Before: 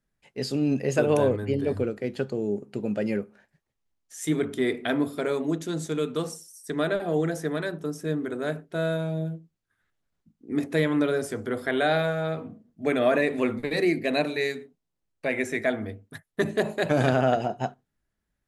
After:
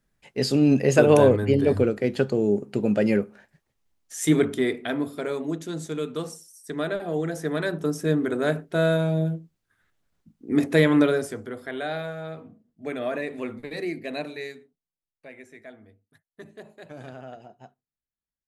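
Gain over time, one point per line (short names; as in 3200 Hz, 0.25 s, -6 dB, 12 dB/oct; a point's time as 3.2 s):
4.4 s +6 dB
4.82 s -2 dB
7.25 s -2 dB
7.8 s +5.5 dB
11.01 s +5.5 dB
11.56 s -7 dB
14.31 s -7 dB
15.46 s -19 dB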